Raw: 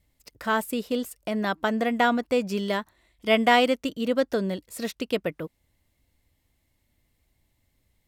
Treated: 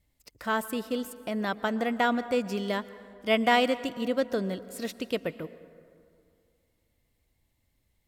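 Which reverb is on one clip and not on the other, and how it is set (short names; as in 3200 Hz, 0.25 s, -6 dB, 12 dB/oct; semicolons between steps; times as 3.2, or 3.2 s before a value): plate-style reverb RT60 2.4 s, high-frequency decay 0.45×, pre-delay 0.105 s, DRR 15.5 dB; gain -3.5 dB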